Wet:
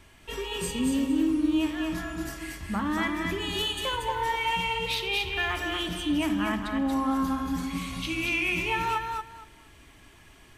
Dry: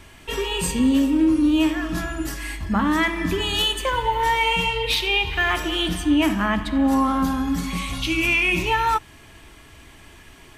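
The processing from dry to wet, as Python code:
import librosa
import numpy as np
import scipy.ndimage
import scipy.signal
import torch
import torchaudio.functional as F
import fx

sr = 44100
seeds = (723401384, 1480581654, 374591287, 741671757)

y = fx.echo_feedback(x, sr, ms=232, feedback_pct=20, wet_db=-4.0)
y = F.gain(torch.from_numpy(y), -8.5).numpy()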